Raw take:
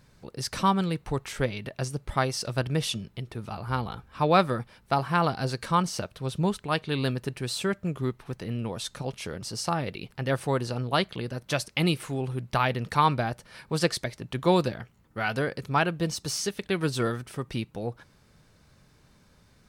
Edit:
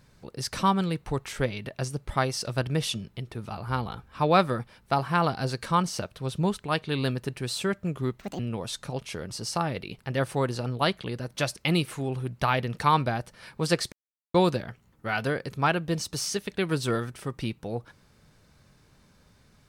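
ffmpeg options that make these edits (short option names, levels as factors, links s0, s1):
-filter_complex "[0:a]asplit=5[s0][s1][s2][s3][s4];[s0]atrim=end=8.194[s5];[s1]atrim=start=8.19:end=8.51,asetpts=PTS-STARTPTS,asetrate=69678,aresample=44100[s6];[s2]atrim=start=8.506:end=14.04,asetpts=PTS-STARTPTS,afade=t=out:st=5.53:d=0.004:c=hsin[s7];[s3]atrim=start=14.04:end=14.46,asetpts=PTS-STARTPTS,volume=0[s8];[s4]atrim=start=14.46,asetpts=PTS-STARTPTS,afade=t=in:d=0.004:c=hsin[s9];[s5][s6]acrossfade=d=0.004:c1=hsin:c2=hsin[s10];[s7][s8][s9]concat=n=3:v=0:a=1[s11];[s10][s11]acrossfade=d=0.004:c1=hsin:c2=hsin"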